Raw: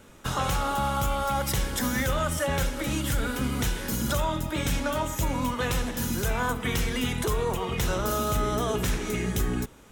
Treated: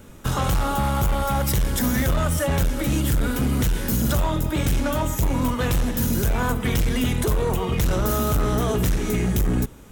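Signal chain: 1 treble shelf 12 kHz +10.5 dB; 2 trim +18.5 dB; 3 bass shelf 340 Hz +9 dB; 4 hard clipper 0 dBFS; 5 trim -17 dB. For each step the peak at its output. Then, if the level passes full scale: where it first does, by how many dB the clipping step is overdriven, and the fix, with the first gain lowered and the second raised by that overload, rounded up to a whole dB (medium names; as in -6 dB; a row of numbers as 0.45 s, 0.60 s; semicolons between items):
-13.0 dBFS, +5.5 dBFS, +9.0 dBFS, 0.0 dBFS, -17.0 dBFS; step 2, 9.0 dB; step 2 +9.5 dB, step 5 -8 dB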